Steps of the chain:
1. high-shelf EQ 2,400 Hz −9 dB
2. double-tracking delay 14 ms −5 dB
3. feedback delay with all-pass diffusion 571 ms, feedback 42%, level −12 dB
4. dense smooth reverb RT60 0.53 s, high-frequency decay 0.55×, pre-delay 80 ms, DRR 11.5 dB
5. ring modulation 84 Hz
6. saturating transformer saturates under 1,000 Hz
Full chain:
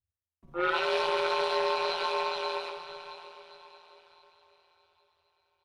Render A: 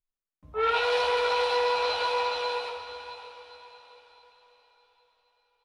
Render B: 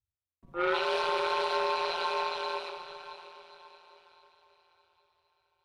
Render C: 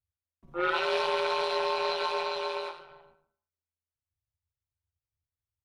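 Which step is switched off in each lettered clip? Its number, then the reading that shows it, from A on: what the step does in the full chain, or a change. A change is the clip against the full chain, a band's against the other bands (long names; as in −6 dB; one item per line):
5, change in crest factor −3.0 dB
2, change in integrated loudness −1.0 LU
3, change in momentary loudness spread −5 LU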